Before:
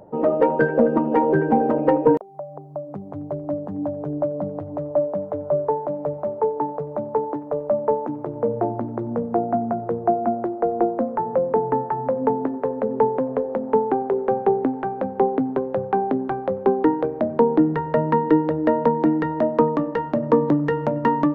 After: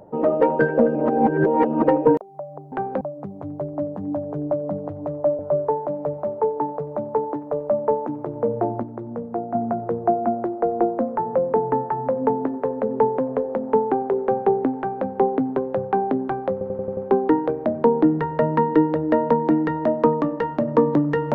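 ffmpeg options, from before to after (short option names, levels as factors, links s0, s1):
-filter_complex "[0:a]asplit=13[s0][s1][s2][s3][s4][s5][s6][s7][s8][s9][s10][s11][s12];[s0]atrim=end=0.952[s13];[s1]atrim=start=0.948:end=1.842,asetpts=PTS-STARTPTS,areverse[s14];[s2]atrim=start=1.838:end=2.722[s15];[s3]atrim=start=14.778:end=15.072[s16];[s4]atrim=start=2.718:end=5.102[s17];[s5]atrim=start=5.388:end=8.832[s18];[s6]atrim=start=8.828:end=9.552,asetpts=PTS-STARTPTS,volume=0.531[s19];[s7]atrim=start=9.548:end=16.612[s20];[s8]atrim=start=16.518:end=16.612[s21];[s9]atrim=start=16.518:end=16.612[s22];[s10]atrim=start=16.518:end=16.612[s23];[s11]atrim=start=16.518:end=16.612[s24];[s12]atrim=start=16.518[s25];[s13][s14]acrossfade=d=0.004:c1=hsin:c2=hsin[s26];[s26][s15]acrossfade=d=0.004:c1=hsin:c2=hsin[s27];[s27][s16]acrossfade=d=0.004:c1=hsin:c2=hsin[s28];[s28][s17]acrossfade=d=0.004:c1=hsin:c2=hsin[s29];[s29][s18]acrossfade=d=0.004:c1=hsin:c2=hsin[s30];[s30][s19]acrossfade=d=0.004:c1=hsin:c2=hsin[s31];[s31][s20]acrossfade=d=0.004:c1=hsin:c2=hsin[s32];[s32][s21]acrossfade=d=0.004:c1=hsin:c2=hsin[s33];[s33][s22]acrossfade=d=0.004:c1=hsin:c2=hsin[s34];[s34][s23]acrossfade=d=0.004:c1=hsin:c2=hsin[s35];[s35][s24]acrossfade=d=0.004:c1=hsin:c2=hsin[s36];[s36][s25]acrossfade=d=0.004:c1=hsin:c2=hsin"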